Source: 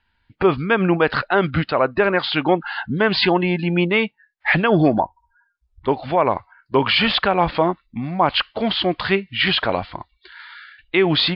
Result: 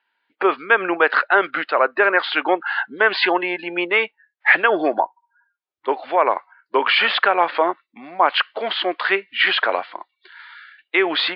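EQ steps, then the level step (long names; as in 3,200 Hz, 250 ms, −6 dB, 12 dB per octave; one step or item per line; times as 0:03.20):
high-pass filter 360 Hz 24 dB per octave
low-pass filter 3,700 Hz 12 dB per octave
dynamic equaliser 1,600 Hz, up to +7 dB, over −35 dBFS, Q 1.2
−1.0 dB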